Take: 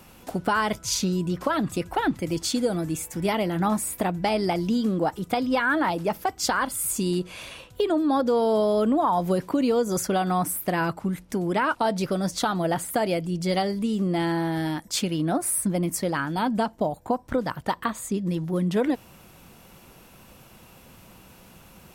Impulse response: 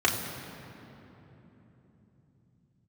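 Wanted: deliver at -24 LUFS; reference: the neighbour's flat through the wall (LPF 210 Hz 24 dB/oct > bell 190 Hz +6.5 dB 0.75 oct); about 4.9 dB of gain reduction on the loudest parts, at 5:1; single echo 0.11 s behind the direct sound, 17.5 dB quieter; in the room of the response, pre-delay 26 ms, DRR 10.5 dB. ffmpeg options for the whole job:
-filter_complex "[0:a]acompressor=threshold=-24dB:ratio=5,aecho=1:1:110:0.133,asplit=2[a][b];[1:a]atrim=start_sample=2205,adelay=26[c];[b][c]afir=irnorm=-1:irlink=0,volume=-24.5dB[d];[a][d]amix=inputs=2:normalize=0,lowpass=f=210:w=0.5412,lowpass=f=210:w=1.3066,equalizer=f=190:t=o:w=0.75:g=6.5,volume=5.5dB"

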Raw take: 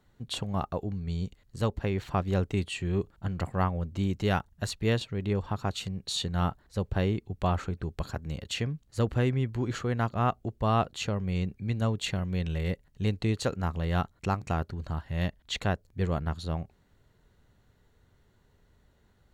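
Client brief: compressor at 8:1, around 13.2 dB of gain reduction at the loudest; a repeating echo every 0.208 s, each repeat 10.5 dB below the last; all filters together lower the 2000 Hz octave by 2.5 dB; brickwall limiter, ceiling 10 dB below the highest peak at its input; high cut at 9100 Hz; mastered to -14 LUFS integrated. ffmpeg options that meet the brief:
-af "lowpass=9.1k,equalizer=f=2k:t=o:g=-3.5,acompressor=threshold=-36dB:ratio=8,alimiter=level_in=9dB:limit=-24dB:level=0:latency=1,volume=-9dB,aecho=1:1:208|416|624:0.299|0.0896|0.0269,volume=29dB"

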